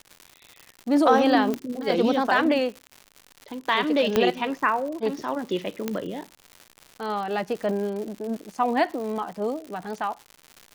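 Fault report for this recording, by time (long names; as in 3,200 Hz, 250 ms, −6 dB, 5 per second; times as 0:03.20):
surface crackle 180 per second −33 dBFS
0:01.54: click −14 dBFS
0:04.16: click −6 dBFS
0:05.88: click −12 dBFS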